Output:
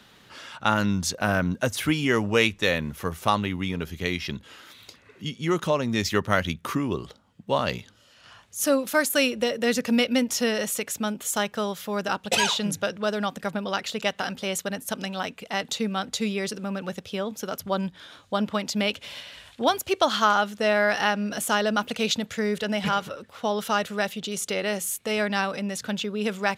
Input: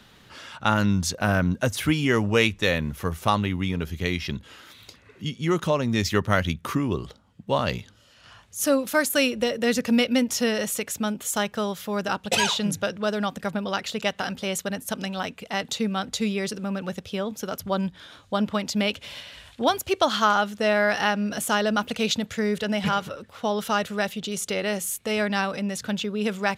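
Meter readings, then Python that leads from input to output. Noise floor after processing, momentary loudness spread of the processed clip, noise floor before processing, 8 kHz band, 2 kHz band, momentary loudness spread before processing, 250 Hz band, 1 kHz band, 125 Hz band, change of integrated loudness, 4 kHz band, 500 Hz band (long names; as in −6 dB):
−56 dBFS, 10 LU, −55 dBFS, 0.0 dB, 0.0 dB, 9 LU, −2.0 dB, 0.0 dB, −3.5 dB, −0.5 dB, 0.0 dB, −0.5 dB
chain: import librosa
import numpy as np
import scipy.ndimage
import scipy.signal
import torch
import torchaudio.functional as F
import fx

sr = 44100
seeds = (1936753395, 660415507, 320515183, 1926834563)

y = fx.low_shelf(x, sr, hz=110.0, db=-9.0)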